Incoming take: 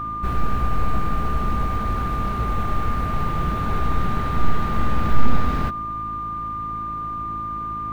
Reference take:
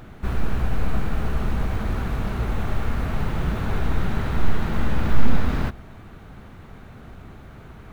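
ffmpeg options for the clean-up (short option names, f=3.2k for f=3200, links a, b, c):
-af "bandreject=f=54.2:t=h:w=4,bandreject=f=108.4:t=h:w=4,bandreject=f=162.6:t=h:w=4,bandreject=f=216.8:t=h:w=4,bandreject=f=271:t=h:w=4,bandreject=f=325.2:t=h:w=4,bandreject=f=1.2k:w=30"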